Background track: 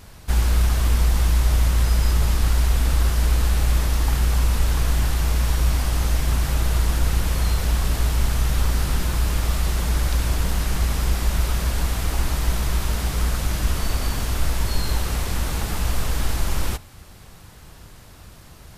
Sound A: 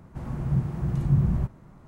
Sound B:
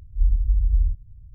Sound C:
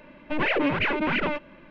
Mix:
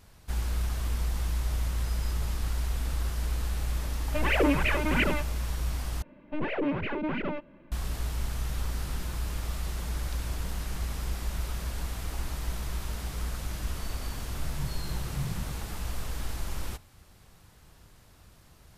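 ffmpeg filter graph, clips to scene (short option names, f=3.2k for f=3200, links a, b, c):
-filter_complex "[3:a]asplit=2[a][b];[0:a]volume=-11.5dB[c];[a]aphaser=in_gain=1:out_gain=1:delay=1.7:decay=0.42:speed=1.7:type=sinusoidal[d];[b]tiltshelf=f=900:g=5.5[e];[c]asplit=2[f][g];[f]atrim=end=6.024[h];[e]atrim=end=1.7,asetpts=PTS-STARTPTS,volume=-8dB[i];[g]atrim=start=7.716[j];[d]atrim=end=1.7,asetpts=PTS-STARTPTS,volume=-3.5dB,afade=t=in:d=0.004:c=hsin,afade=t=out:st=1.696:d=0.004:c=hsin,adelay=3840[k];[1:a]atrim=end=1.87,asetpts=PTS-STARTPTS,volume=-13dB,afade=t=in:d=0.004:c=hsin,afade=t=out:st=1.866:d=0.004:c=hsin,adelay=14070[l];[h][i]acrossfade=d=0.004:c1=hsin:c2=hsin[m];[m][j]acrossfade=d=0.004:c1=hsin:c2=hsin[n];[n][k][l]amix=inputs=3:normalize=0"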